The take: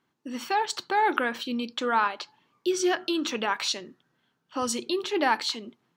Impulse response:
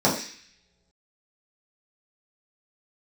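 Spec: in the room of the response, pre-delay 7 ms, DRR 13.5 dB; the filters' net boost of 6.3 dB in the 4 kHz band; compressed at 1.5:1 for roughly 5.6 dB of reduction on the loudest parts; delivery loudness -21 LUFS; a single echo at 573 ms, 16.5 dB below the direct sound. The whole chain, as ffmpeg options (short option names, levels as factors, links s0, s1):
-filter_complex "[0:a]equalizer=f=4000:t=o:g=7.5,acompressor=threshold=0.02:ratio=1.5,aecho=1:1:573:0.15,asplit=2[s0][s1];[1:a]atrim=start_sample=2205,adelay=7[s2];[s1][s2]afir=irnorm=-1:irlink=0,volume=0.0282[s3];[s0][s3]amix=inputs=2:normalize=0,volume=2.82"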